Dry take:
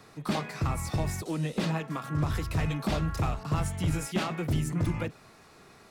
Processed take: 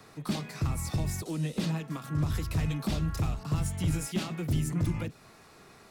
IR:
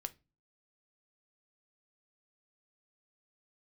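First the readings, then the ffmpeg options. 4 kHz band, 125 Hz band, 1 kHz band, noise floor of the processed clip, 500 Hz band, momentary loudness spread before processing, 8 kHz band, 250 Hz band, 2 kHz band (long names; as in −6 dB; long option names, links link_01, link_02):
−1.5 dB, 0.0 dB, −7.0 dB, −55 dBFS, −5.0 dB, 3 LU, +1.0 dB, −1.0 dB, −5.0 dB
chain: -filter_complex "[0:a]highshelf=frequency=12000:gain=4,acrossover=split=330|3000[link_01][link_02][link_03];[link_02]acompressor=threshold=-44dB:ratio=2.5[link_04];[link_01][link_04][link_03]amix=inputs=3:normalize=0"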